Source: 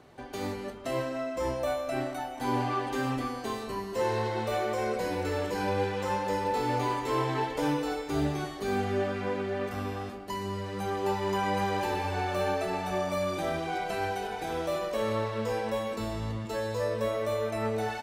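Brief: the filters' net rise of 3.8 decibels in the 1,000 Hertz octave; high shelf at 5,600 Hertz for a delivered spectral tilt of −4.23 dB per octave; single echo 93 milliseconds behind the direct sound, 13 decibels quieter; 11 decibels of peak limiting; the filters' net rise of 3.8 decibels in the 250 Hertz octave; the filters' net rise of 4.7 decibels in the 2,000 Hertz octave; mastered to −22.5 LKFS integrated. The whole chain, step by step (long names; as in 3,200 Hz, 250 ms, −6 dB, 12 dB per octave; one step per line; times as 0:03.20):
parametric band 250 Hz +4.5 dB
parametric band 1,000 Hz +3.5 dB
parametric band 2,000 Hz +4 dB
high-shelf EQ 5,600 Hz +6.5 dB
brickwall limiter −24.5 dBFS
single-tap delay 93 ms −13 dB
level +10 dB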